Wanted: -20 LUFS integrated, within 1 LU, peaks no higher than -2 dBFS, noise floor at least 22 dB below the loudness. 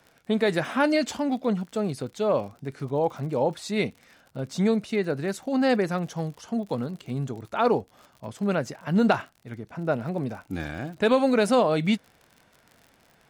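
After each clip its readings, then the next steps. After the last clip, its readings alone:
ticks 52/s; loudness -26.0 LUFS; peak -8.5 dBFS; loudness target -20.0 LUFS
-> de-click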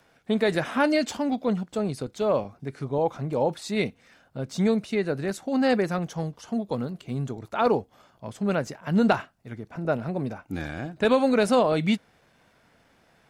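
ticks 0.23/s; loudness -26.0 LUFS; peak -8.5 dBFS; loudness target -20.0 LUFS
-> gain +6 dB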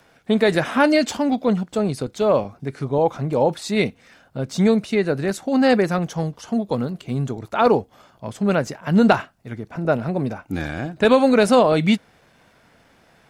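loudness -20.0 LUFS; peak -2.5 dBFS; noise floor -57 dBFS

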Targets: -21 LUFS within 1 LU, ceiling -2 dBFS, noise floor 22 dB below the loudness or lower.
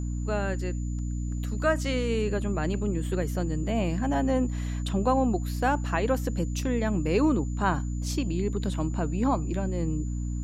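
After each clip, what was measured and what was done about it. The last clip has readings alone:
hum 60 Hz; harmonics up to 300 Hz; hum level -28 dBFS; steady tone 7000 Hz; tone level -50 dBFS; loudness -28.0 LUFS; peak -12.0 dBFS; loudness target -21.0 LUFS
-> de-hum 60 Hz, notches 5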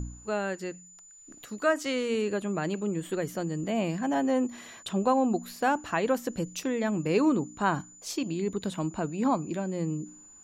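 hum none; steady tone 7000 Hz; tone level -50 dBFS
-> notch 7000 Hz, Q 30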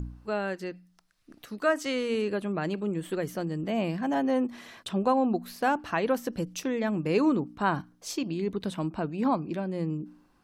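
steady tone none; loudness -29.5 LUFS; peak -13.5 dBFS; loudness target -21.0 LUFS
-> gain +8.5 dB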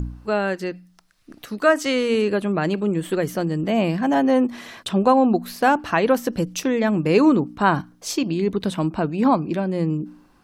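loudness -21.0 LUFS; peak -5.0 dBFS; noise floor -56 dBFS

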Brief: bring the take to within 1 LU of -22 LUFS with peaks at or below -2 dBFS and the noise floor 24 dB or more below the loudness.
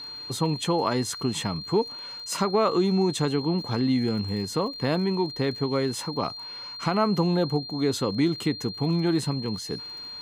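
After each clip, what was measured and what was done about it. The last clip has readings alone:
ticks 31/s; steady tone 4200 Hz; tone level -36 dBFS; loudness -26.5 LUFS; peak -10.5 dBFS; loudness target -22.0 LUFS
-> de-click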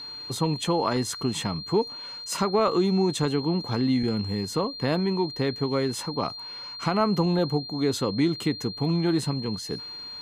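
ticks 0/s; steady tone 4200 Hz; tone level -36 dBFS
-> notch 4200 Hz, Q 30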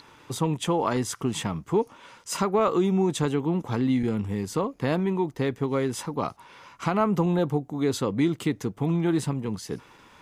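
steady tone none; loudness -26.5 LUFS; peak -11.0 dBFS; loudness target -22.0 LUFS
-> gain +4.5 dB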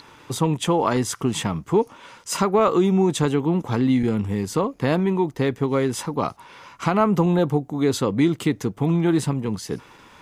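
loudness -22.0 LUFS; peak -6.5 dBFS; noise floor -49 dBFS

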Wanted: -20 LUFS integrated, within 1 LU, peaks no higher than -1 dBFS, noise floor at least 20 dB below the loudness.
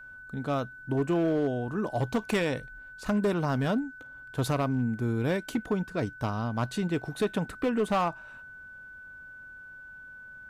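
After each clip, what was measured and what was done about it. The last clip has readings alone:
clipped 1.1%; flat tops at -20.5 dBFS; steady tone 1500 Hz; tone level -44 dBFS; loudness -30.0 LUFS; peak -20.5 dBFS; loudness target -20.0 LUFS
-> clip repair -20.5 dBFS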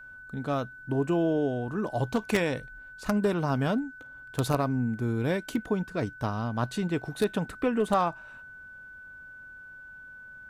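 clipped 0.0%; steady tone 1500 Hz; tone level -44 dBFS
-> notch 1500 Hz, Q 30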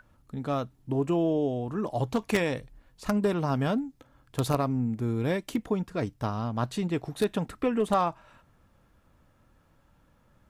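steady tone none; loudness -29.5 LUFS; peak -11.5 dBFS; loudness target -20.0 LUFS
-> gain +9.5 dB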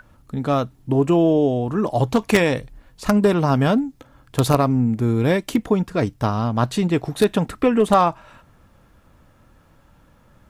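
loudness -20.0 LUFS; peak -2.0 dBFS; noise floor -55 dBFS

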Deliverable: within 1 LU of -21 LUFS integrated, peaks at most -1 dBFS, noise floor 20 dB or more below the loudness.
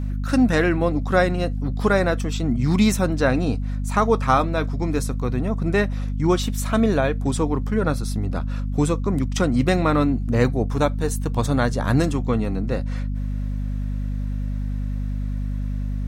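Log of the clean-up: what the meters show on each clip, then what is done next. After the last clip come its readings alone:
hum 50 Hz; harmonics up to 250 Hz; hum level -23 dBFS; loudness -22.5 LUFS; peak -4.0 dBFS; loudness target -21.0 LUFS
-> de-hum 50 Hz, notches 5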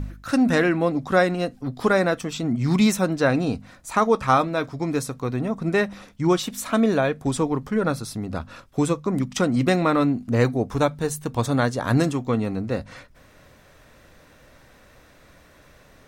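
hum none; loudness -23.0 LUFS; peak -5.0 dBFS; loudness target -21.0 LUFS
-> gain +2 dB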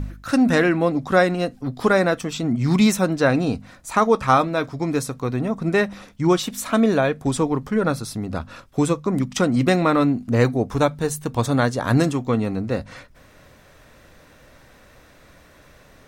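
loudness -21.0 LUFS; peak -3.0 dBFS; noise floor -51 dBFS

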